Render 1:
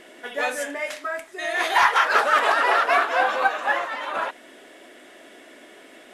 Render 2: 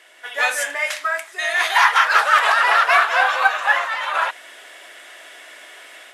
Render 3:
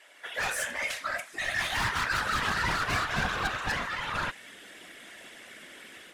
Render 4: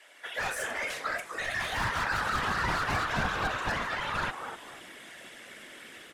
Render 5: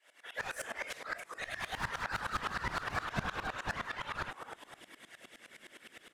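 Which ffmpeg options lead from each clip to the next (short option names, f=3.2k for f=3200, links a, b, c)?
-af "highpass=960,dynaudnorm=f=210:g=3:m=9dB"
-af "asoftclip=type=tanh:threshold=-19dB,afftfilt=real='hypot(re,im)*cos(2*PI*random(0))':imag='hypot(re,im)*sin(2*PI*random(1))':win_size=512:overlap=0.75,asubboost=boost=9.5:cutoff=240"
-filter_complex "[0:a]acrossover=split=280|1600[a][b][c];[b]asplit=5[d][e][f][g][h];[e]adelay=250,afreqshift=-110,volume=-4.5dB[i];[f]adelay=500,afreqshift=-220,volume=-15dB[j];[g]adelay=750,afreqshift=-330,volume=-25.4dB[k];[h]adelay=1000,afreqshift=-440,volume=-35.9dB[l];[d][i][j][k][l]amix=inputs=5:normalize=0[m];[c]alimiter=level_in=5.5dB:limit=-24dB:level=0:latency=1:release=40,volume=-5.5dB[n];[a][m][n]amix=inputs=3:normalize=0"
-af "aeval=exprs='val(0)*pow(10,-20*if(lt(mod(-9.7*n/s,1),2*abs(-9.7)/1000),1-mod(-9.7*n/s,1)/(2*abs(-9.7)/1000),(mod(-9.7*n/s,1)-2*abs(-9.7)/1000)/(1-2*abs(-9.7)/1000))/20)':c=same,volume=-1dB"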